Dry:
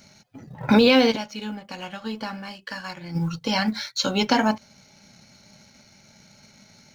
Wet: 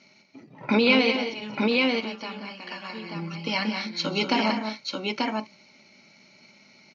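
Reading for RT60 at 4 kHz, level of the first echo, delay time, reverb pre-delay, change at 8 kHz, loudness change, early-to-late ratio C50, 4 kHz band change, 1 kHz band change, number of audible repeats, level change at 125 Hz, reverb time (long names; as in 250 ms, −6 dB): no reverb audible, −19.5 dB, 132 ms, no reverb audible, can't be measured, −2.5 dB, no reverb audible, −1.0 dB, −2.5 dB, 4, −6.0 dB, no reverb audible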